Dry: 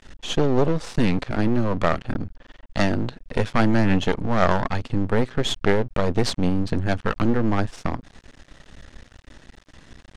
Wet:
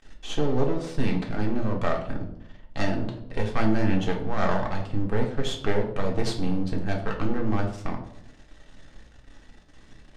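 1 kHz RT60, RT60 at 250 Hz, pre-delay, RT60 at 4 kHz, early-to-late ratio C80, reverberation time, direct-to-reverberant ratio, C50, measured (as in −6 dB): 0.65 s, 0.80 s, 3 ms, 0.45 s, 11.5 dB, 0.75 s, 0.0 dB, 8.0 dB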